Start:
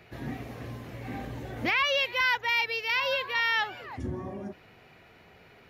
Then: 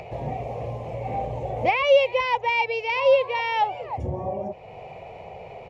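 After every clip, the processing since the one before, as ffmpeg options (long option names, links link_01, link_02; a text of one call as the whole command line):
ffmpeg -i in.wav -filter_complex "[0:a]firequalizer=gain_entry='entry(150,0);entry(270,-12);entry(510,9);entry(810,8);entry(1500,-21);entry(2300,-3);entry(3800,-13);entry(7500,-9);entry(14000,-27)':delay=0.05:min_phase=1,asplit=2[link_01][link_02];[link_02]acompressor=mode=upward:threshold=-31dB:ratio=2.5,volume=0dB[link_03];[link_01][link_03]amix=inputs=2:normalize=0" out.wav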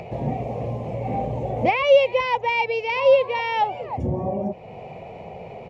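ffmpeg -i in.wav -af "equalizer=frequency=220:width=0.95:gain=10.5" out.wav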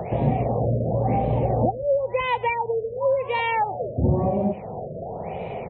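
ffmpeg -i in.wav -filter_complex "[0:a]acrossover=split=150[link_01][link_02];[link_02]acompressor=threshold=-26dB:ratio=6[link_03];[link_01][link_03]amix=inputs=2:normalize=0,aecho=1:1:120:0.0891,afftfilt=real='re*lt(b*sr/1024,660*pow(4200/660,0.5+0.5*sin(2*PI*0.96*pts/sr)))':imag='im*lt(b*sr/1024,660*pow(4200/660,0.5+0.5*sin(2*PI*0.96*pts/sr)))':win_size=1024:overlap=0.75,volume=6dB" out.wav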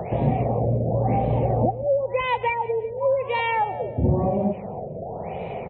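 ffmpeg -i in.wav -af "aecho=1:1:179|358|537:0.126|0.0453|0.0163" out.wav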